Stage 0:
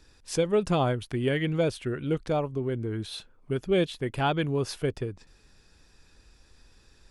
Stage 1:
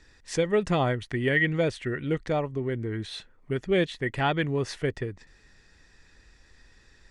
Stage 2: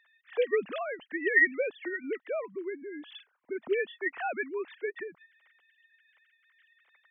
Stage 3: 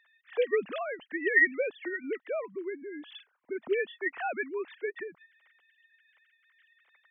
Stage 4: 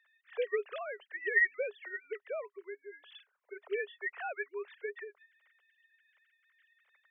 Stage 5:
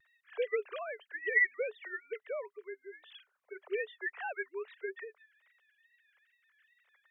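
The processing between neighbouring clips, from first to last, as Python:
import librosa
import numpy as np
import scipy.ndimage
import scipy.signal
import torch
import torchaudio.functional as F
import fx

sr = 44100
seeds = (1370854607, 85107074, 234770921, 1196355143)

y1 = scipy.signal.sosfilt(scipy.signal.butter(4, 8600.0, 'lowpass', fs=sr, output='sos'), x)
y1 = fx.peak_eq(y1, sr, hz=1900.0, db=14.5, octaves=0.24)
y1 = fx.notch(y1, sr, hz=5000.0, q=23.0)
y2 = fx.sine_speech(y1, sr)
y2 = fx.low_shelf(y2, sr, hz=400.0, db=-11.5)
y2 = y2 * 10.0 ** (-1.0 / 20.0)
y3 = y2
y4 = scipy.signal.sosfilt(scipy.signal.cheby1(6, 3, 400.0, 'highpass', fs=sr, output='sos'), y3)
y4 = y4 * 10.0 ** (-4.0 / 20.0)
y5 = fx.vibrato(y4, sr, rate_hz=2.4, depth_cents=98.0)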